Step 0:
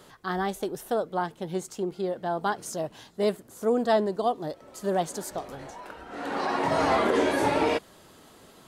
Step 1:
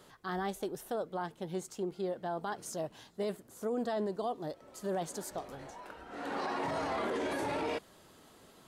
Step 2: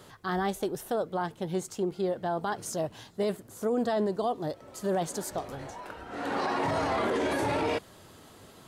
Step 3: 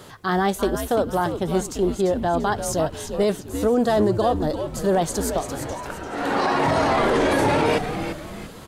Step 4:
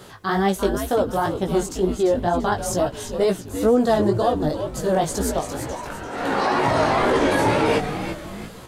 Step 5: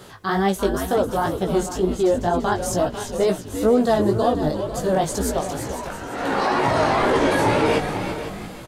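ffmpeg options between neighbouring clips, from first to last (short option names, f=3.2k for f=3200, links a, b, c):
-af "alimiter=limit=-21dB:level=0:latency=1:release=12,volume=-6dB"
-af "equalizer=f=100:t=o:w=0.67:g=8.5,volume=6dB"
-filter_complex "[0:a]asplit=5[a][b][c][d][e];[b]adelay=343,afreqshift=-130,volume=-8dB[f];[c]adelay=686,afreqshift=-260,volume=-16.2dB[g];[d]adelay=1029,afreqshift=-390,volume=-24.4dB[h];[e]adelay=1372,afreqshift=-520,volume=-32.5dB[i];[a][f][g][h][i]amix=inputs=5:normalize=0,volume=8.5dB"
-af "flanger=delay=15.5:depth=5.1:speed=2.1,volume=3.5dB"
-af "aecho=1:1:497:0.251"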